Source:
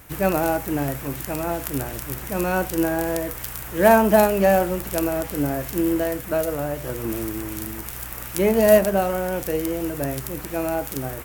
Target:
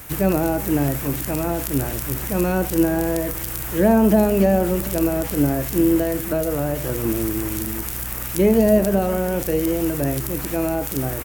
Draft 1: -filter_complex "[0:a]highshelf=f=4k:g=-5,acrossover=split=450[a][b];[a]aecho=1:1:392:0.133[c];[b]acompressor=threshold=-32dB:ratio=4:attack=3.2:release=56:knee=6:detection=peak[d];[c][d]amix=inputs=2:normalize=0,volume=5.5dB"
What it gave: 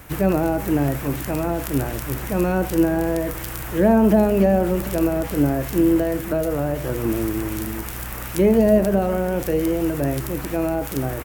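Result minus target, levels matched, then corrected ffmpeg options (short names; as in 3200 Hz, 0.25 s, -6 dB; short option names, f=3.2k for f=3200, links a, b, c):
8000 Hz band -5.0 dB
-filter_complex "[0:a]highshelf=f=4k:g=5,acrossover=split=450[a][b];[a]aecho=1:1:392:0.133[c];[b]acompressor=threshold=-32dB:ratio=4:attack=3.2:release=56:knee=6:detection=peak[d];[c][d]amix=inputs=2:normalize=0,volume=5.5dB"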